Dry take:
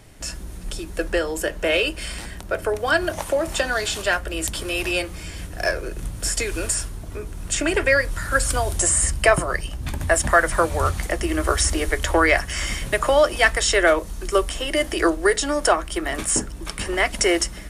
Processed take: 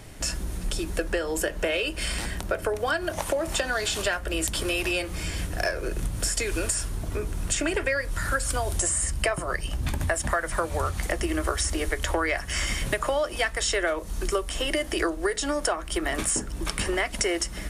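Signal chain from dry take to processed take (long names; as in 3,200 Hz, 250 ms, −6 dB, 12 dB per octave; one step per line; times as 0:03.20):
downward compressor, threshold −27 dBFS, peak gain reduction 15.5 dB
level +3.5 dB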